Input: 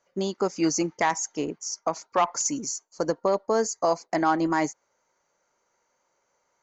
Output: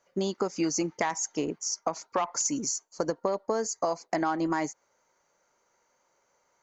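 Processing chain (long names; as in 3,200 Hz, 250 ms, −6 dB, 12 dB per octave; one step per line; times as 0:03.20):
downward compressor 6 to 1, threshold −26 dBFS, peak gain reduction 9 dB
level +1.5 dB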